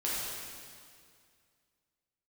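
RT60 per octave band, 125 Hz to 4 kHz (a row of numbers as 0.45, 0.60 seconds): 2.4, 2.3, 2.2, 2.1, 2.1, 2.0 seconds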